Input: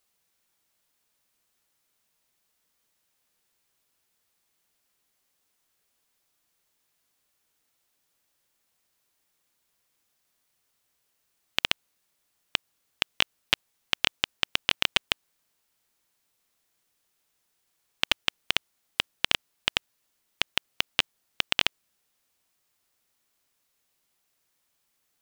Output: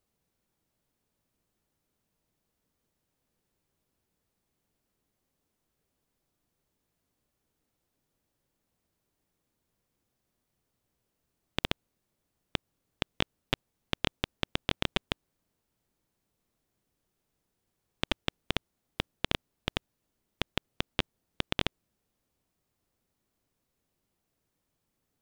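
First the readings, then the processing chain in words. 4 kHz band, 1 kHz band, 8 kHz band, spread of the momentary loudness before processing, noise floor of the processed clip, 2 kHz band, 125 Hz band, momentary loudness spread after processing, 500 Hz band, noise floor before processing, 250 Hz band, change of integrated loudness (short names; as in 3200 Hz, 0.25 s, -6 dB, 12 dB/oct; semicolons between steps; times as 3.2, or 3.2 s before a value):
-9.0 dB, -3.0 dB, -10.5 dB, 7 LU, -82 dBFS, -8.0 dB, +8.0 dB, 7 LU, +2.5 dB, -75 dBFS, +6.5 dB, -7.0 dB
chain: tilt shelf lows +9.5 dB, about 640 Hz; Doppler distortion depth 0.28 ms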